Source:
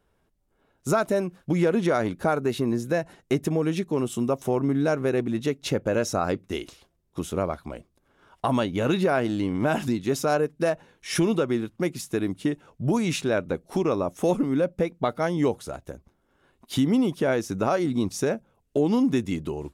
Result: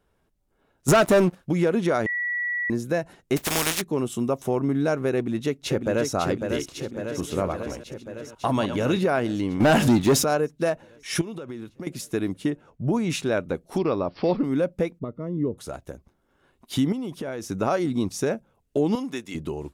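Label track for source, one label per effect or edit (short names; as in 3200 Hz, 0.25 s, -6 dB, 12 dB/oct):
0.880000	1.350000	sample leveller passes 3
2.060000	2.700000	bleep 1940 Hz -24 dBFS
3.360000	3.800000	spectral contrast lowered exponent 0.26
5.150000	6.100000	echo throw 0.55 s, feedback 70%, level -5 dB
6.600000	8.990000	reverse delay 0.103 s, level -9 dB
9.600000	10.240000	sample leveller passes 3
11.210000	11.870000	compressor 12:1, threshold -31 dBFS
12.500000	13.100000	high shelf 2700 Hz -10 dB
13.780000	14.440000	careless resampling rate divided by 4×, down none, up filtered
14.990000	15.580000	running mean over 56 samples
16.920000	17.420000	compressor 12:1, threshold -27 dBFS
18.950000	19.350000	HPF 820 Hz 6 dB/oct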